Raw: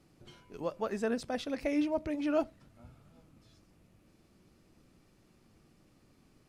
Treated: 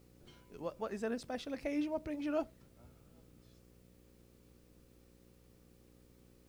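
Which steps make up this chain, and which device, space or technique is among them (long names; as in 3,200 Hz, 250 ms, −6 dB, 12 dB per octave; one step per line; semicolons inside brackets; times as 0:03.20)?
video cassette with head-switching buzz (hum with harmonics 60 Hz, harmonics 9, −59 dBFS −3 dB per octave; white noise bed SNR 32 dB)
level −5.5 dB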